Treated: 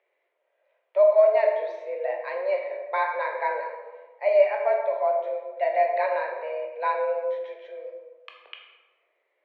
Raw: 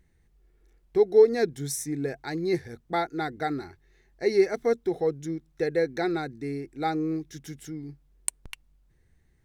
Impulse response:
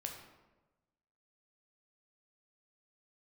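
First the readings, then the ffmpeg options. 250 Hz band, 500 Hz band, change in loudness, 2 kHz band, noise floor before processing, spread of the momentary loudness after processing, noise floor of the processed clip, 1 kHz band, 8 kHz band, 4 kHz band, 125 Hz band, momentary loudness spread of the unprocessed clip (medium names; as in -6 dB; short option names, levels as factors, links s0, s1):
under -25 dB, +3.0 dB, +2.5 dB, +4.0 dB, -65 dBFS, 19 LU, -75 dBFS, +7.0 dB, under -35 dB, no reading, under -40 dB, 18 LU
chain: -filter_complex "[1:a]atrim=start_sample=2205,asetrate=38367,aresample=44100[s0];[0:a][s0]afir=irnorm=-1:irlink=0,highpass=f=270:t=q:w=0.5412,highpass=f=270:t=q:w=1.307,lowpass=f=3100:t=q:w=0.5176,lowpass=f=3100:t=q:w=0.7071,lowpass=f=3100:t=q:w=1.932,afreqshift=200,volume=1.5"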